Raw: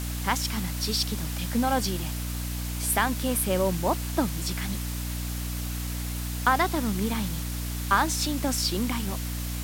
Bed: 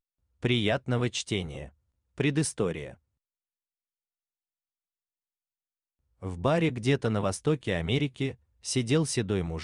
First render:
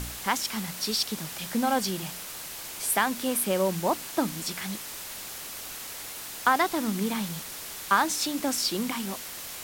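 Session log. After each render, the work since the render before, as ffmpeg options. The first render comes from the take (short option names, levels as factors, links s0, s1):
-af "bandreject=f=60:t=h:w=4,bandreject=f=120:t=h:w=4,bandreject=f=180:t=h:w=4,bandreject=f=240:t=h:w=4,bandreject=f=300:t=h:w=4"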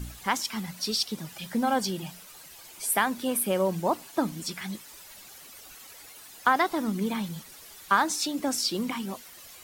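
-af "afftdn=nr=12:nf=-39"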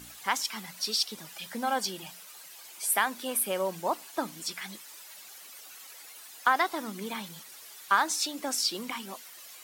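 -af "highpass=f=710:p=1"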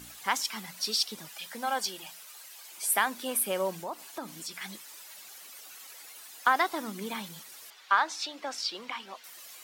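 -filter_complex "[0:a]asettb=1/sr,asplit=3[s0][s1][s2];[s0]atrim=end=1.284[s3];[s1]atrim=start=1.28:end=2.72,asetpts=PTS-STARTPTS,afade=t=in:d=0.004:c=qsin,afade=t=out:st=1.436:d=0.004:c=qsin,highpass=f=520:p=1[s4];[s2]atrim=start=2.716[s5];[s3][s4]acrossfade=d=0.004:c1=hsin:c2=qsin[s6];[s6][s5]acrossfade=d=0.004:c1=qsin:c2=hsin,asettb=1/sr,asplit=3[s7][s8][s9];[s7]atrim=end=3.734[s10];[s8]atrim=start=3.73:end=4.61,asetpts=PTS-STARTPTS,afade=t=in:d=0.004:c=qsin,afade=t=out:st=0.876:d=0.004:c=qsin,acompressor=threshold=0.0126:ratio=2:attack=3.2:release=140:knee=1:detection=peak[s11];[s9]atrim=start=4.606[s12];[s10][s11]acrossfade=d=0.004:c1=hsin:c2=qsin[s13];[s13][s12]acrossfade=d=0.004:c1=qsin:c2=hsin,asettb=1/sr,asplit=3[s14][s15][s16];[s14]atrim=end=7.704[s17];[s15]atrim=start=7.7:end=9.24,asetpts=PTS-STARTPTS,afade=t=in:d=0.004:c=qsin,afade=t=out:st=1.536:d=0.004:c=qsin,acrossover=split=440 5200:gain=0.224 1 0.1[s18][s19][s20];[s18][s19][s20]amix=inputs=3:normalize=0[s21];[s16]atrim=start=9.236[s22];[s17][s21]acrossfade=d=0.004:c1=hsin:c2=qsin[s23];[s23][s22]acrossfade=d=0.004:c1=qsin:c2=hsin"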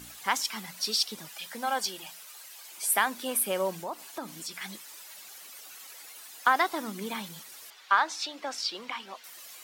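-af "volume=1.12"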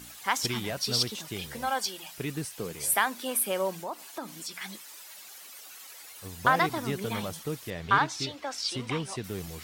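-filter_complex "[1:a]volume=0.398[s0];[0:a][s0]amix=inputs=2:normalize=0"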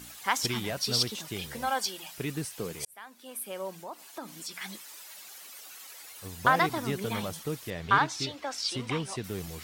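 -filter_complex "[0:a]asplit=2[s0][s1];[s0]atrim=end=2.85,asetpts=PTS-STARTPTS,afade=t=out:st=2.846:d=0.004:c=hsin[s2];[s1]atrim=start=2.85,asetpts=PTS-STARTPTS,afade=t=in:d=1.86[s3];[s2][s3]concat=n=2:v=0:a=1"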